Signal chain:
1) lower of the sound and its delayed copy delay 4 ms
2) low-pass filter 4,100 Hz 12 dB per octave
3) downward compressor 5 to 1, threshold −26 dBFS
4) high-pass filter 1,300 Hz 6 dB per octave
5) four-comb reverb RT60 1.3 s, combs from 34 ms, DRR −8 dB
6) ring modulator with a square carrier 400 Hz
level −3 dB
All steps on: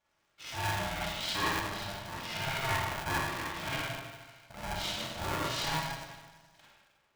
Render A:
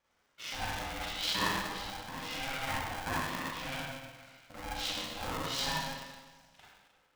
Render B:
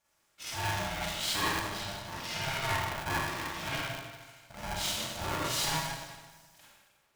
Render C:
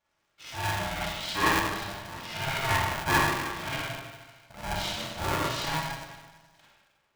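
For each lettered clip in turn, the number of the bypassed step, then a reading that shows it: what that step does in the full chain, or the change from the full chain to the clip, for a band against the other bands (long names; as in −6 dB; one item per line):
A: 1, change in crest factor +2.0 dB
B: 2, 8 kHz band +5.0 dB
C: 3, average gain reduction 2.0 dB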